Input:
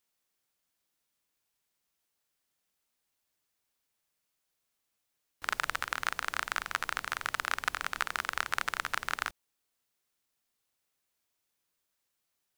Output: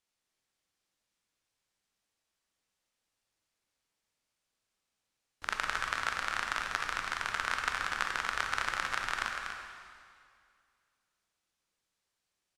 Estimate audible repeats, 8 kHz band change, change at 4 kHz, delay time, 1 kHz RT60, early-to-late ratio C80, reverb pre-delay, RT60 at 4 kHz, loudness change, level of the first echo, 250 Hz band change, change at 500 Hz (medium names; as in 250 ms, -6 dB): 1, -1.5 dB, +0.5 dB, 242 ms, 2.2 s, 3.0 dB, 7 ms, 2.1 s, 0.0 dB, -7.0 dB, +1.0 dB, +0.5 dB